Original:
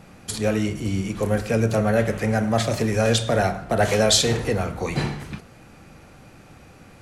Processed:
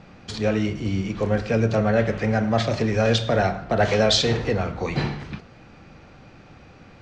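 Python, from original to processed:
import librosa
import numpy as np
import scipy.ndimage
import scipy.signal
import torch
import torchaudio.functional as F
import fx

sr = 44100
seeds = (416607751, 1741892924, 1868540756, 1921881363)

y = scipy.signal.sosfilt(scipy.signal.butter(4, 5400.0, 'lowpass', fs=sr, output='sos'), x)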